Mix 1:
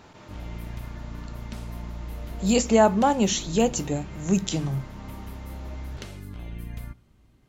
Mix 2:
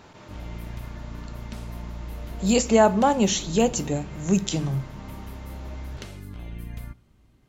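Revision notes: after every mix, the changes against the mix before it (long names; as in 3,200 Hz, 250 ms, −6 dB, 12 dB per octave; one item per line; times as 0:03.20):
speech: send on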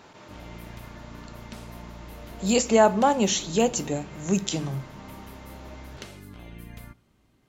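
master: add low-shelf EQ 120 Hz −11.5 dB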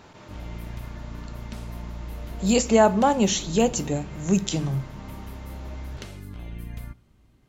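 master: add low-shelf EQ 120 Hz +11.5 dB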